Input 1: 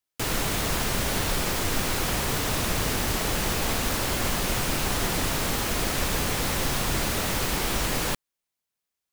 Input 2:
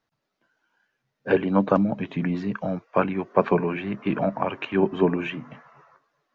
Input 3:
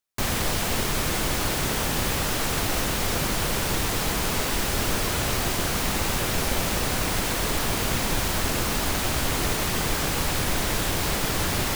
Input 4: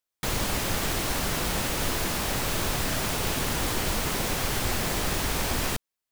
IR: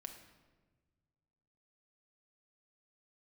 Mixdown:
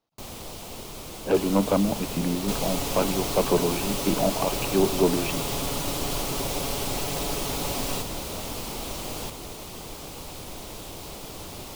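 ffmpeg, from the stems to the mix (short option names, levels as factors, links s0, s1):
-filter_complex "[0:a]adelay=1150,volume=0.562[s0];[1:a]volume=1.26[s1];[2:a]volume=0.316[s2];[3:a]aecho=1:1:7.1:0.9,adelay=2250,volume=0.794[s3];[s0][s1][s2][s3]amix=inputs=4:normalize=0,bass=f=250:g=-5,treble=f=4000:g=-3,asoftclip=type=hard:threshold=0.224,equalizer=f=1700:w=1.7:g=-13.5"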